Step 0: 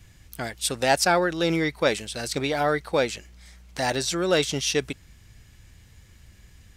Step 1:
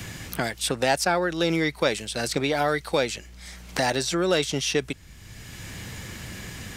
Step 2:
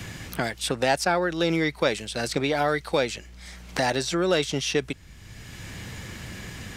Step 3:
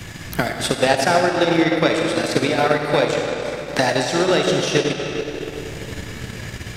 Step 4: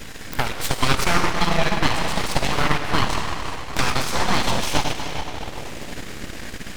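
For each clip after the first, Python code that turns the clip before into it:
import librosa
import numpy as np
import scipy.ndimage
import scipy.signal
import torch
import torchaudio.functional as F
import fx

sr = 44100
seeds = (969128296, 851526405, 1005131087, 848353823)

y1 = fx.band_squash(x, sr, depth_pct=70)
y2 = fx.high_shelf(y1, sr, hz=7100.0, db=-6.0)
y3 = fx.rev_freeverb(y2, sr, rt60_s=3.9, hf_ratio=0.75, predelay_ms=10, drr_db=-1.5)
y3 = fx.transient(y3, sr, attack_db=6, sustain_db=-7)
y3 = F.gain(torch.from_numpy(y3), 2.5).numpy()
y4 = np.abs(y3)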